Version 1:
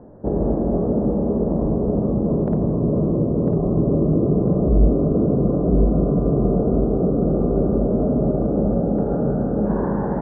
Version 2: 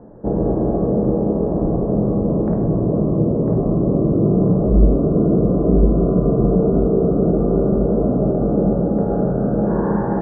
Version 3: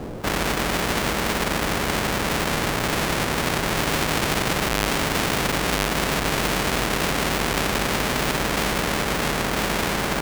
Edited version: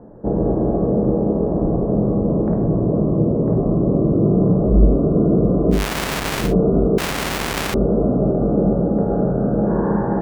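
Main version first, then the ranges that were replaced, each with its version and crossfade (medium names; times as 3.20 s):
2
5.78–6.46 s: from 3, crossfade 0.16 s
6.98–7.74 s: from 3
not used: 1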